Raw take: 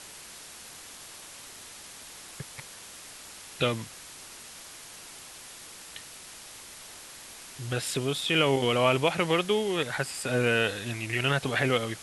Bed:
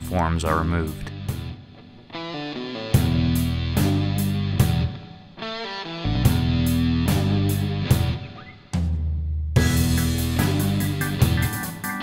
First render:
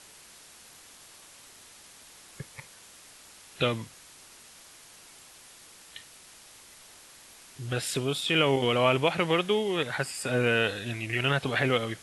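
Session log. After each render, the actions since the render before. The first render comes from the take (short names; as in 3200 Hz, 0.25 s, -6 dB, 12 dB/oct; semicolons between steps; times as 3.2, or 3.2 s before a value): noise print and reduce 6 dB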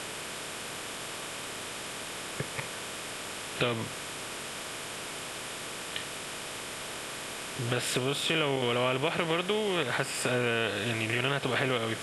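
per-bin compression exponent 0.6; compressor 2.5:1, threshold -27 dBFS, peak gain reduction 8 dB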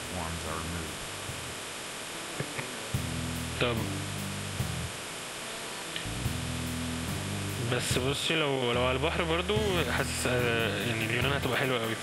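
add bed -15 dB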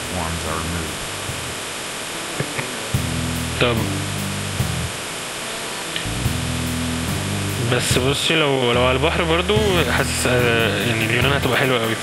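gain +11 dB; limiter -2 dBFS, peak gain reduction 2 dB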